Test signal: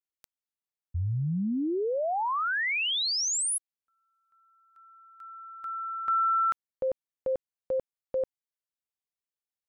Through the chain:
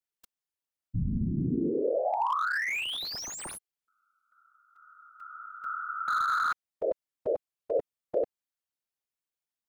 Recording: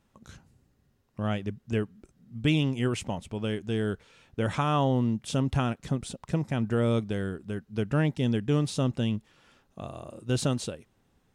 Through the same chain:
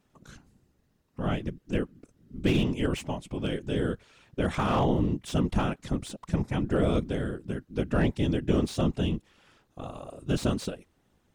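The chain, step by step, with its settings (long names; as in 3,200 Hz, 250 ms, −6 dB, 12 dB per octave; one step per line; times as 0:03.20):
random phases in short frames
slew-rate limiting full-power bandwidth 75 Hz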